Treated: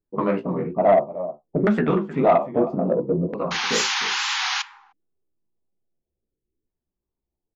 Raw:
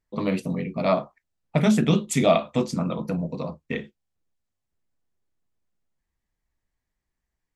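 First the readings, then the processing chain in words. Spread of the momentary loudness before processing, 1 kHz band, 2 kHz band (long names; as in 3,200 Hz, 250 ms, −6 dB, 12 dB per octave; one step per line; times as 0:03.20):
12 LU, +7.0 dB, +8.5 dB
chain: flanger 1.2 Hz, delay 8.9 ms, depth 9.6 ms, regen +26%
in parallel at +1.5 dB: brickwall limiter −20 dBFS, peak gain reduction 9 dB
on the sum: auto-filter low-pass saw down 0.6 Hz 360–1,700 Hz
sound drawn into the spectrogram noise, 0:03.51–0:04.62, 750–7,100 Hz −23 dBFS
parametric band 370 Hz +6.5 dB 0.44 octaves
slap from a distant wall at 53 metres, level −15 dB
low-pass that shuts in the quiet parts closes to 370 Hz, open at −15 dBFS
low-shelf EQ 240 Hz −9 dB
tape wow and flutter 85 cents
soft clipping −9.5 dBFS, distortion −19 dB
level +1.5 dB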